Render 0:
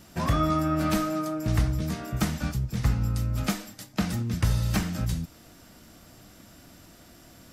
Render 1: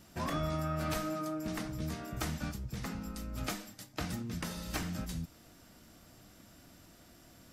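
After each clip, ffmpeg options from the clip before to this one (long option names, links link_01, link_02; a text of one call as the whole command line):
ffmpeg -i in.wav -af "afftfilt=real='re*lt(hypot(re,im),0.398)':imag='im*lt(hypot(re,im),0.398)':win_size=1024:overlap=0.75,volume=-6.5dB" out.wav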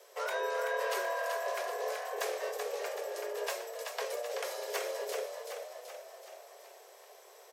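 ffmpeg -i in.wav -filter_complex "[0:a]asplit=8[link_01][link_02][link_03][link_04][link_05][link_06][link_07][link_08];[link_02]adelay=380,afreqshift=39,volume=-5.5dB[link_09];[link_03]adelay=760,afreqshift=78,volume=-10.5dB[link_10];[link_04]adelay=1140,afreqshift=117,volume=-15.6dB[link_11];[link_05]adelay=1520,afreqshift=156,volume=-20.6dB[link_12];[link_06]adelay=1900,afreqshift=195,volume=-25.6dB[link_13];[link_07]adelay=2280,afreqshift=234,volume=-30.7dB[link_14];[link_08]adelay=2660,afreqshift=273,volume=-35.7dB[link_15];[link_01][link_09][link_10][link_11][link_12][link_13][link_14][link_15]amix=inputs=8:normalize=0,afreqshift=360" out.wav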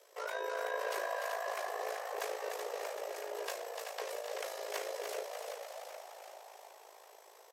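ffmpeg -i in.wav -filter_complex "[0:a]tremolo=f=54:d=0.621,asplit=9[link_01][link_02][link_03][link_04][link_05][link_06][link_07][link_08][link_09];[link_02]adelay=296,afreqshift=71,volume=-6dB[link_10];[link_03]adelay=592,afreqshift=142,volume=-10.6dB[link_11];[link_04]adelay=888,afreqshift=213,volume=-15.2dB[link_12];[link_05]adelay=1184,afreqshift=284,volume=-19.7dB[link_13];[link_06]adelay=1480,afreqshift=355,volume=-24.3dB[link_14];[link_07]adelay=1776,afreqshift=426,volume=-28.9dB[link_15];[link_08]adelay=2072,afreqshift=497,volume=-33.5dB[link_16];[link_09]adelay=2368,afreqshift=568,volume=-38.1dB[link_17];[link_01][link_10][link_11][link_12][link_13][link_14][link_15][link_16][link_17]amix=inputs=9:normalize=0,volume=-2dB" out.wav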